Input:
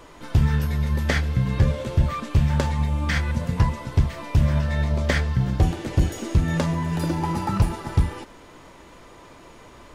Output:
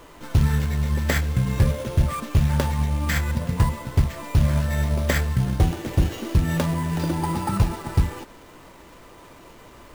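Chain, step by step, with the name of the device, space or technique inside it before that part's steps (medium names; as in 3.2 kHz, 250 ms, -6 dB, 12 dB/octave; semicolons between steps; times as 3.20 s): early companding sampler (sample-rate reducer 9.6 kHz, jitter 0%; companded quantiser 6-bit)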